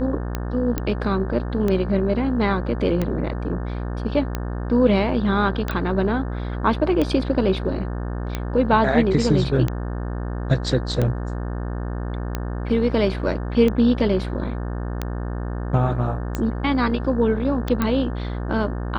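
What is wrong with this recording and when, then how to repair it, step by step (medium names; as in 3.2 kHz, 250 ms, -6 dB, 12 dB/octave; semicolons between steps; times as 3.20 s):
buzz 60 Hz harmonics 30 -27 dBFS
tick 45 rpm -11 dBFS
0.78 s: pop -9 dBFS
5.71 s: pop -14 dBFS
17.82 s: pop -9 dBFS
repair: de-click; de-hum 60 Hz, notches 30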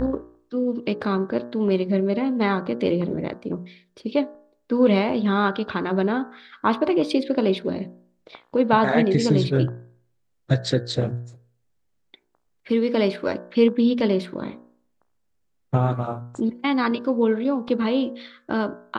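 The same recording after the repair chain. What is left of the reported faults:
nothing left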